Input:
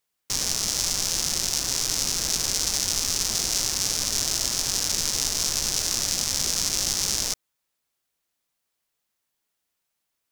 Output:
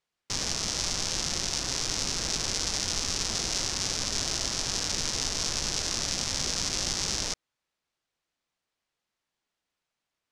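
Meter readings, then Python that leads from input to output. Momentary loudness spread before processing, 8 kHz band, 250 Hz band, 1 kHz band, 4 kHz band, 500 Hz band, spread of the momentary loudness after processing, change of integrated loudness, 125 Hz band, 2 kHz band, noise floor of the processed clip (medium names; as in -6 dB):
1 LU, -6.5 dB, 0.0 dB, -0.5 dB, -3.5 dB, 0.0 dB, 1 LU, -5.0 dB, 0.0 dB, -1.0 dB, under -85 dBFS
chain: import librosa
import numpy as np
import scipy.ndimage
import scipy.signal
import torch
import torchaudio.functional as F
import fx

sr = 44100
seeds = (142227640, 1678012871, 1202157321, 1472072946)

y = fx.air_absorb(x, sr, metres=88.0)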